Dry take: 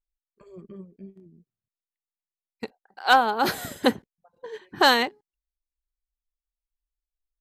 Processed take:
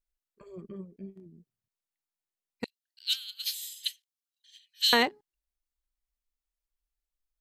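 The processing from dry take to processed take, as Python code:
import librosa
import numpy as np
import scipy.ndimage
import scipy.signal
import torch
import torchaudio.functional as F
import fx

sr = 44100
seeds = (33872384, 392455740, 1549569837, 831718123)

y = fx.steep_highpass(x, sr, hz=2900.0, slope=36, at=(2.64, 4.93))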